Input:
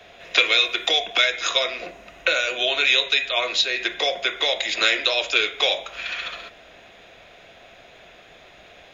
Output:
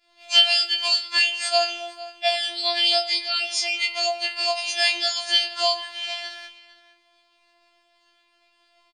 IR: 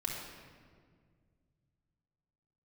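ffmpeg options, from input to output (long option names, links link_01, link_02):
-filter_complex "[0:a]agate=range=-33dB:threshold=-38dB:ratio=3:detection=peak,asplit=2[link_01][link_02];[link_02]adelay=460.6,volume=-16dB,highshelf=frequency=4000:gain=-10.4[link_03];[link_01][link_03]amix=inputs=2:normalize=0,asetrate=57191,aresample=44100,atempo=0.771105,afftfilt=real='hypot(re,im)*cos(PI*b)':imag='0':win_size=2048:overlap=0.75,afftfilt=real='re*4*eq(mod(b,16),0)':imag='im*4*eq(mod(b,16),0)':win_size=2048:overlap=0.75,volume=-1dB"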